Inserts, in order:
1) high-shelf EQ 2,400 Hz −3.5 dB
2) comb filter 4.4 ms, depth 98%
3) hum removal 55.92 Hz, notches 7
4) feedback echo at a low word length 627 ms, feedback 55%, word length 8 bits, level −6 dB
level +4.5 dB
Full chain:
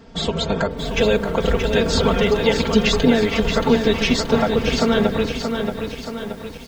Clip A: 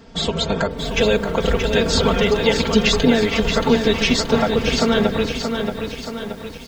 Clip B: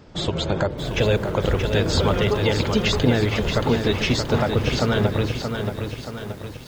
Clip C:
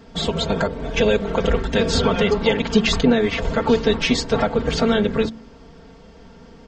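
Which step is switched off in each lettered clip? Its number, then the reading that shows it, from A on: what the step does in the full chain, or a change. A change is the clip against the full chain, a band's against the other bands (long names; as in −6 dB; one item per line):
1, 8 kHz band +2.5 dB
2, 125 Hz band +7.0 dB
4, change in momentary loudness spread −4 LU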